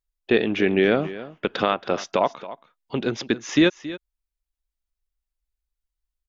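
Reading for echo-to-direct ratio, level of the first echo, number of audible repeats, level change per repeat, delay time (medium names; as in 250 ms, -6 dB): -15.5 dB, -15.5 dB, 1, no regular repeats, 275 ms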